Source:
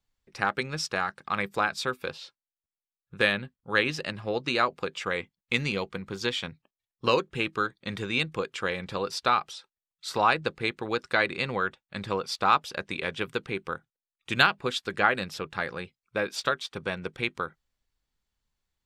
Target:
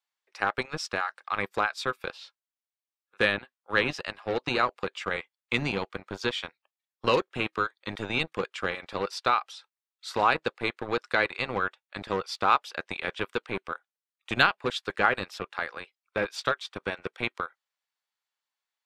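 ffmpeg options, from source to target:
-filter_complex "[0:a]highshelf=f=5.5k:g=-7,acrossover=split=590|5000[a][b][c];[a]acrusher=bits=4:mix=0:aa=0.5[d];[d][b][c]amix=inputs=3:normalize=0"

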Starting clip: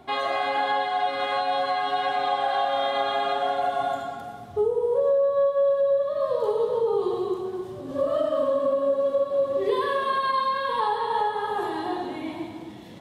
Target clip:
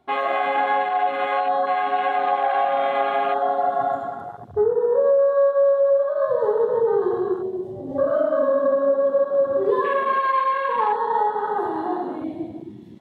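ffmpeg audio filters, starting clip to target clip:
-af "afwtdn=0.0251,volume=4dB"

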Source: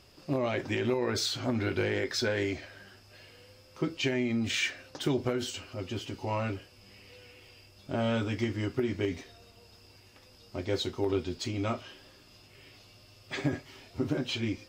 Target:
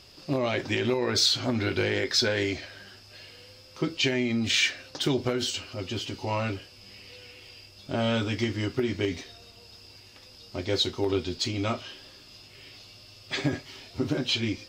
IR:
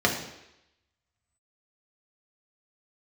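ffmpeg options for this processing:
-af "equalizer=f=4.3k:w=0.99:g=7.5,volume=2.5dB"

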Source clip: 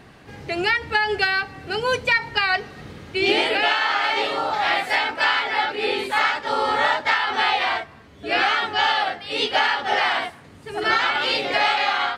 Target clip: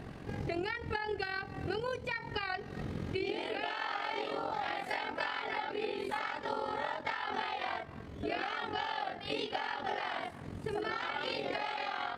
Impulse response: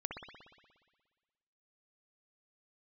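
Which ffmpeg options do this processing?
-af "tiltshelf=f=790:g=5,acompressor=threshold=-32dB:ratio=12,tremolo=f=44:d=0.621,volume=1.5dB"

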